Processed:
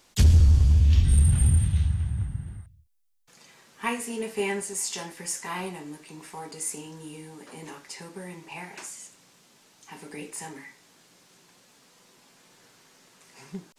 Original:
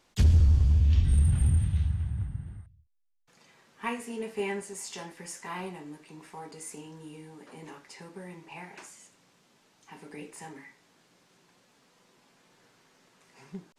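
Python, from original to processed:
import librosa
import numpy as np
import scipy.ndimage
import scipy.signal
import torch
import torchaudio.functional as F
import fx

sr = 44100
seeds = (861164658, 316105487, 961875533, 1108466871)

y = fx.high_shelf(x, sr, hz=4400.0, db=9.0)
y = F.gain(torch.from_numpy(y), 3.5).numpy()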